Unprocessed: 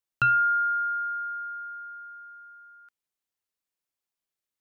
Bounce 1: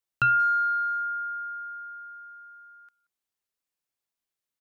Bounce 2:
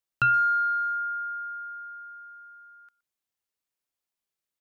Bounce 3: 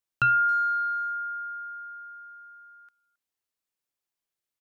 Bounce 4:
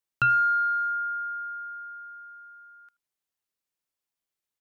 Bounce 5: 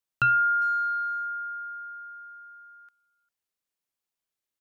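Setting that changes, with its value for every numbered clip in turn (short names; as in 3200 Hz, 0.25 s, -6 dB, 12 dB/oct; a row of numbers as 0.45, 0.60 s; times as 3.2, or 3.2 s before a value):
speakerphone echo, time: 180, 120, 270, 80, 400 ms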